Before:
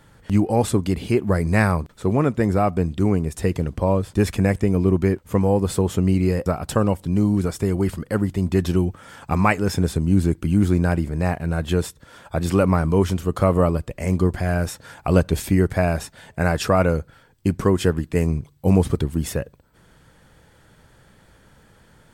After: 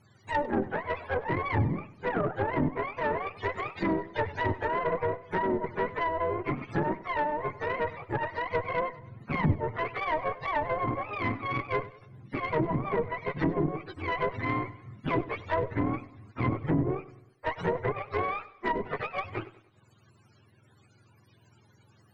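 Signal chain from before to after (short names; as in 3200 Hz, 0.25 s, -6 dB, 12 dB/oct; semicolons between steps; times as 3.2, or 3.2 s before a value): spectrum mirrored in octaves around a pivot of 430 Hz; added harmonics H 4 -15 dB, 6 -20 dB, 8 -19 dB, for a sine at -3.5 dBFS; treble ducked by the level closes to 410 Hz, closed at -13 dBFS; soft clip -8.5 dBFS, distortion -21 dB; warbling echo 98 ms, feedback 44%, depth 66 cents, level -17.5 dB; gain -6.5 dB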